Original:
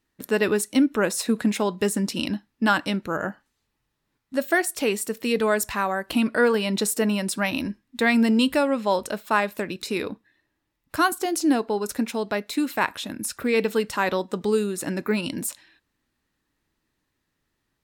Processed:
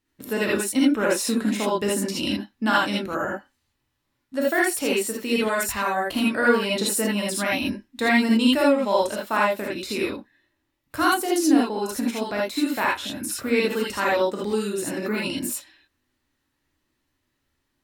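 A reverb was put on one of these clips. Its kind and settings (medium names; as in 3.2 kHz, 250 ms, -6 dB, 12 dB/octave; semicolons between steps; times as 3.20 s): gated-style reverb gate 100 ms rising, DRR -4 dB; trim -4 dB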